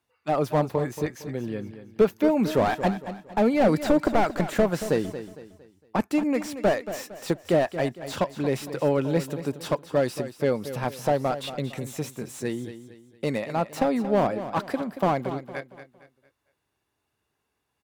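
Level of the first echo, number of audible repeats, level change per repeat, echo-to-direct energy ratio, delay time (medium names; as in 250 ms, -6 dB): -12.0 dB, 3, -8.5 dB, -11.5 dB, 229 ms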